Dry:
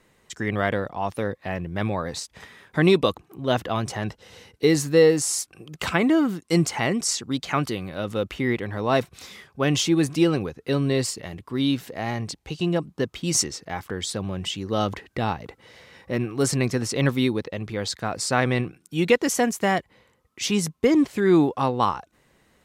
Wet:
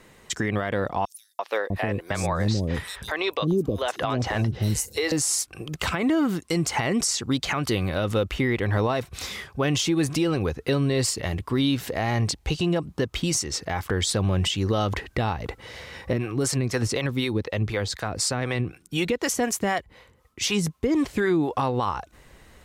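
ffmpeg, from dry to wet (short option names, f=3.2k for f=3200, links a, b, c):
-filter_complex "[0:a]asettb=1/sr,asplit=3[a][b][c];[a]atrim=end=1.054[d];[b]atrim=start=1.05:end=5.12,asetpts=PTS-STARTPTS,afade=t=in:d=0.004:c=qsin,afade=t=out:st=4.066:d=0.004:c=qsin,acrossover=split=440|5800[e][f][g];[f]adelay=340[h];[e]adelay=650[i];[i][h][g]amix=inputs=3:normalize=0,atrim=end_sample=179487[j];[c]atrim=start=5.116[k];[d][j]acrossfade=d=0.004:c1=hsin:c2=qsin[l];[l][k]acrossfade=d=0.004:c1=qsin:c2=hsin,asettb=1/sr,asplit=3[m][n][o];[m]atrim=end=16.134[p];[n]atrim=start=16.13:end=21.53,asetpts=PTS-STARTPTS,afade=t=in:d=0.004:c=qsin,afade=t=out:st=5.396:d=0.004:c=qsin,acrossover=split=440[q][r];[q]aeval=exprs='val(0)*(1-0.7/2+0.7/2*cos(2*PI*4*n/s))':c=same[s];[r]aeval=exprs='val(0)*(1-0.7/2-0.7/2*cos(2*PI*4*n/s))':c=same[t];[s][t]amix=inputs=2:normalize=0[u];[o]atrim=start=21.526[v];[p][u]acrossfade=d=0.004:c1=hsin:c2=qsin[w];[w][v]acrossfade=d=0.004:c1=qsin:c2=hsin,asubboost=boost=3.5:cutoff=84,acompressor=threshold=-25dB:ratio=2.5,alimiter=limit=-23dB:level=0:latency=1:release=191,volume=8.5dB"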